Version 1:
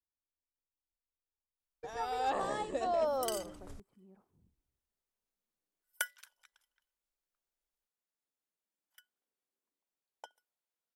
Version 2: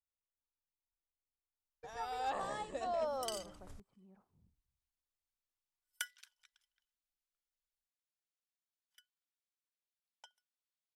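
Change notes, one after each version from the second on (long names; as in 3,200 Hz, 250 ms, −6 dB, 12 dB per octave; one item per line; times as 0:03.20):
first sound −3.5 dB
second sound: add resonant band-pass 4,100 Hz, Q 0.78
master: add parametric band 350 Hz −7 dB 1 octave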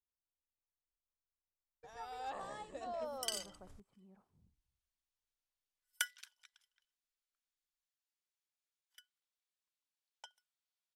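first sound −6.0 dB
second sound +4.5 dB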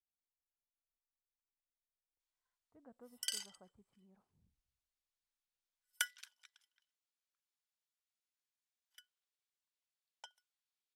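speech −5.0 dB
first sound: muted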